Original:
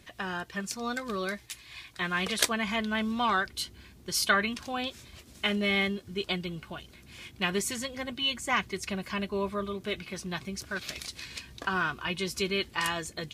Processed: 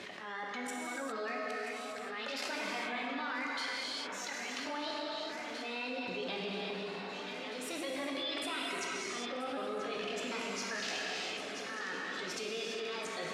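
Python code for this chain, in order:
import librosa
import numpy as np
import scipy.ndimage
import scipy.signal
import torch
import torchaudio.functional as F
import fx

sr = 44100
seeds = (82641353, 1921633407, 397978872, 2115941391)

y = fx.pitch_ramps(x, sr, semitones=5.5, every_ms=870)
y = fx.high_shelf(y, sr, hz=3800.0, db=-9.0)
y = fx.level_steps(y, sr, step_db=24)
y = fx.auto_swell(y, sr, attack_ms=520.0)
y = fx.bandpass_edges(y, sr, low_hz=370.0, high_hz=6400.0)
y = fx.echo_alternate(y, sr, ms=492, hz=1500.0, feedback_pct=84, wet_db=-13.5)
y = fx.rev_gated(y, sr, seeds[0], gate_ms=430, shape='flat', drr_db=-2.5)
y = fx.env_flatten(y, sr, amount_pct=70)
y = F.gain(torch.from_numpy(y), 6.5).numpy()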